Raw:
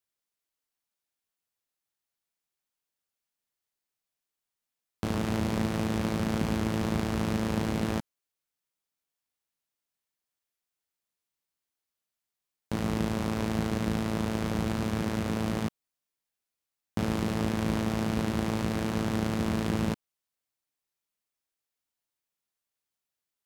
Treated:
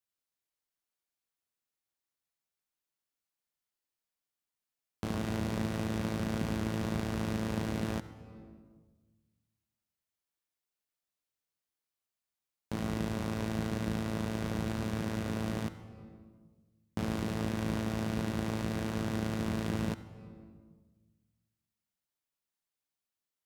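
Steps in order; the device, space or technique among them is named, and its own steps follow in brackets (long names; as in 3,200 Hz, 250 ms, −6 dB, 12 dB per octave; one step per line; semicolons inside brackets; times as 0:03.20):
compressed reverb return (on a send at −3.5 dB: convolution reverb RT60 1.3 s, pre-delay 64 ms + downward compressor 10 to 1, threshold −36 dBFS, peak gain reduction 13.5 dB)
on the sum: level −5 dB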